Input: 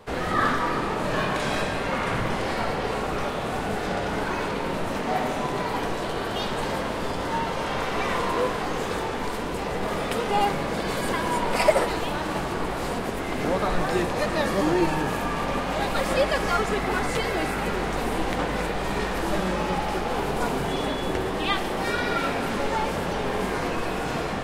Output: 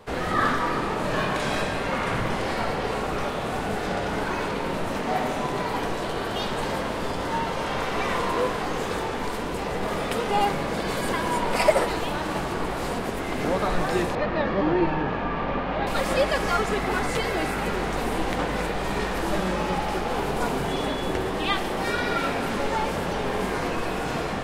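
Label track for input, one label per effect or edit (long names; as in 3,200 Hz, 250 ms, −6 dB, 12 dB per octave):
14.150000	15.870000	Bessel low-pass filter 2,600 Hz, order 4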